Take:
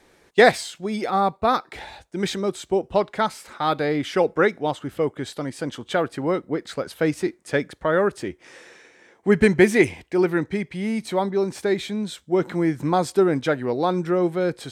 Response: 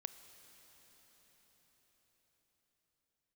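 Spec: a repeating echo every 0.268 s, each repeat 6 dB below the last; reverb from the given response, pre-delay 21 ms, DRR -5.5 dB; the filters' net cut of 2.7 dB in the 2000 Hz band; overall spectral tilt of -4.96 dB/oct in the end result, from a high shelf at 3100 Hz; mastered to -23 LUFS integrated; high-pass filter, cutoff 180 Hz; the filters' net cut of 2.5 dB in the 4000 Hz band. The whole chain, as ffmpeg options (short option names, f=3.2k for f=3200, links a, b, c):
-filter_complex "[0:a]highpass=180,equalizer=f=2k:t=o:g=-4,highshelf=f=3.1k:g=6.5,equalizer=f=4k:t=o:g=-6.5,aecho=1:1:268|536|804|1072|1340|1608:0.501|0.251|0.125|0.0626|0.0313|0.0157,asplit=2[a][b];[1:a]atrim=start_sample=2205,adelay=21[c];[b][c]afir=irnorm=-1:irlink=0,volume=9dB[d];[a][d]amix=inputs=2:normalize=0,volume=-7dB"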